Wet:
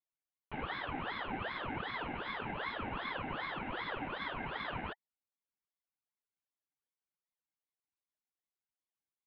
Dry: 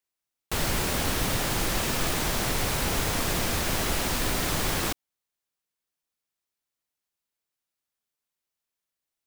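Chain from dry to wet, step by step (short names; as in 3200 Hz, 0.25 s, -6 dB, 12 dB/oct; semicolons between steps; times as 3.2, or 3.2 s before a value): vocal tract filter e; ring modulator with a swept carrier 940 Hz, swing 75%, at 2.6 Hz; gain +4.5 dB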